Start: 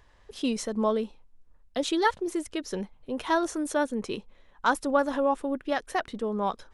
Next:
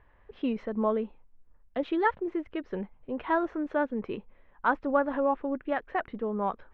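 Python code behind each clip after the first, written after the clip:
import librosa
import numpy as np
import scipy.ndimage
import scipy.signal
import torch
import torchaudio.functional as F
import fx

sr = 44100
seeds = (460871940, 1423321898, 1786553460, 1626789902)

y = scipy.signal.sosfilt(scipy.signal.butter(4, 2400.0, 'lowpass', fs=sr, output='sos'), x)
y = y * librosa.db_to_amplitude(-1.5)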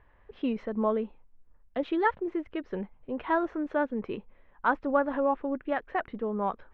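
y = x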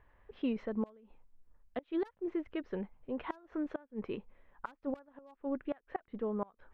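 y = np.minimum(x, 2.0 * 10.0 ** (-19.0 / 20.0) - x)
y = fx.gate_flip(y, sr, shuts_db=-20.0, range_db=-27)
y = y * librosa.db_to_amplitude(-4.0)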